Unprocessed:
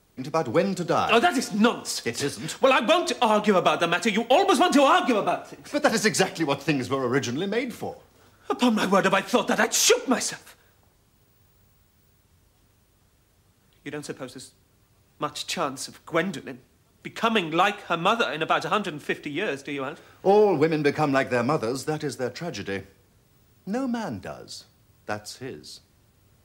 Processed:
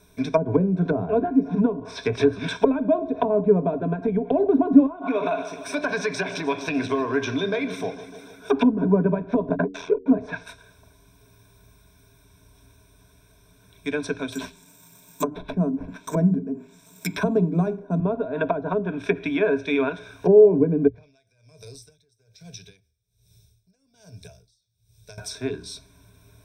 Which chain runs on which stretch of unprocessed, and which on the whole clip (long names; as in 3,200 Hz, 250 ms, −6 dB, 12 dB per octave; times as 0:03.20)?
0:04.86–0:08.51: low-shelf EQ 150 Hz −11.5 dB + downward compressor 5 to 1, threshold −27 dBFS + feedback echo with a swinging delay time 150 ms, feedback 71%, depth 86 cents, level −16 dB
0:09.49–0:10.06: noise gate −25 dBFS, range −56 dB + mains-hum notches 60/120/180/240/300/360/420 Hz + ring modulation 42 Hz
0:14.32–0:18.00: low shelf with overshoot 120 Hz −13 dB, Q 3 + mains-hum notches 50/100/150/200/250/300/350/400 Hz + bad sample-rate conversion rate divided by 6×, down none, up zero stuff
0:20.87–0:25.18: drawn EQ curve 140 Hz 0 dB, 260 Hz −22 dB, 500 Hz −10 dB, 1,100 Hz −24 dB, 4,500 Hz +2 dB, 11,000 Hz −2 dB + downward compressor 12 to 1, threshold −43 dBFS + tremolo with a sine in dB 1.2 Hz, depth 26 dB
whole clip: dynamic equaliser 8,500 Hz, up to −4 dB, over −41 dBFS, Q 0.75; treble cut that deepens with the level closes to 370 Hz, closed at −20 dBFS; EQ curve with evenly spaced ripples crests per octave 1.6, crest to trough 16 dB; level +3.5 dB